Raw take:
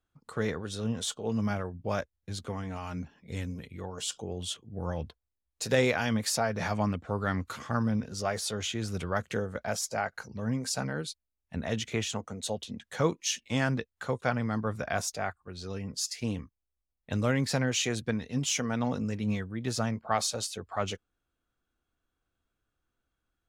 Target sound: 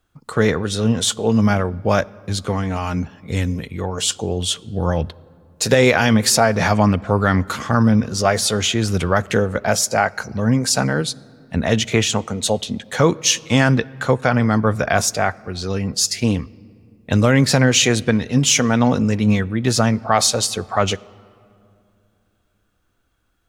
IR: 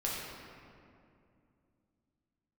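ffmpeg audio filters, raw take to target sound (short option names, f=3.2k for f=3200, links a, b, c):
-filter_complex "[0:a]asplit=2[a][b];[1:a]atrim=start_sample=2205[c];[b][c]afir=irnorm=-1:irlink=0,volume=-26dB[d];[a][d]amix=inputs=2:normalize=0,alimiter=level_in=15dB:limit=-1dB:release=50:level=0:latency=1,volume=-1dB"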